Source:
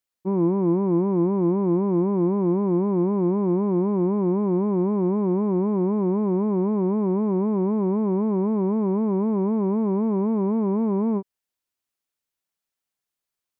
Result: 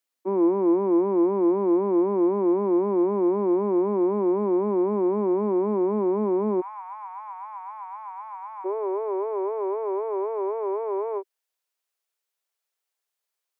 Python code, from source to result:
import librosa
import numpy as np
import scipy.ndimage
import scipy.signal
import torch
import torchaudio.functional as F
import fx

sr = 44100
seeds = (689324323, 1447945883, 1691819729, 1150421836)

y = fx.steep_highpass(x, sr, hz=fx.steps((0.0, 220.0), (6.6, 780.0), (8.64, 380.0)), slope=72)
y = y * librosa.db_to_amplitude(2.0)